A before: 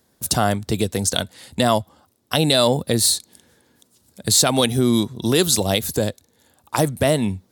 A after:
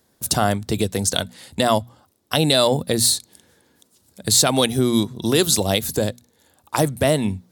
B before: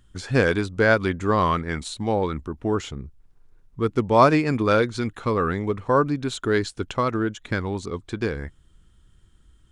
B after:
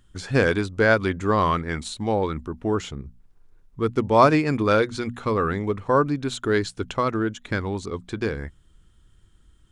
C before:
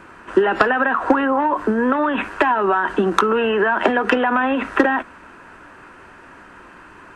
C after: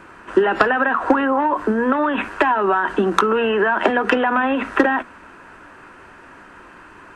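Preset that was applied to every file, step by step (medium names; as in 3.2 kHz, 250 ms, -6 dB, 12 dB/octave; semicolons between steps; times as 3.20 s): hum notches 60/120/180/240 Hz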